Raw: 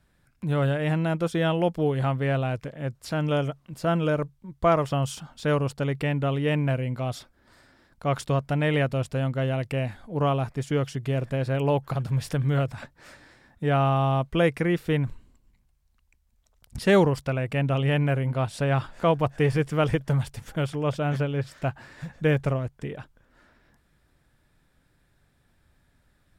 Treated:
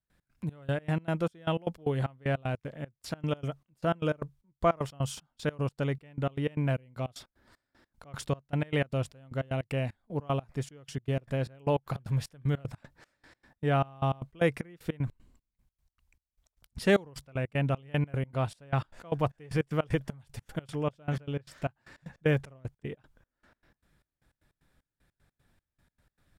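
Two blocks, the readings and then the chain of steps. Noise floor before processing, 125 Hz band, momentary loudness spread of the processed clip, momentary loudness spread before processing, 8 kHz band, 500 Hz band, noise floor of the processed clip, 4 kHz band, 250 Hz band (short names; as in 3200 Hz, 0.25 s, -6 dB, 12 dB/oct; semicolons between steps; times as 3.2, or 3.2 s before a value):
-67 dBFS, -7.0 dB, 11 LU, 9 LU, -5.0 dB, -6.5 dB, under -85 dBFS, -6.5 dB, -6.5 dB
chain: step gate ".x.xx..x" 153 bpm -24 dB; gain -3.5 dB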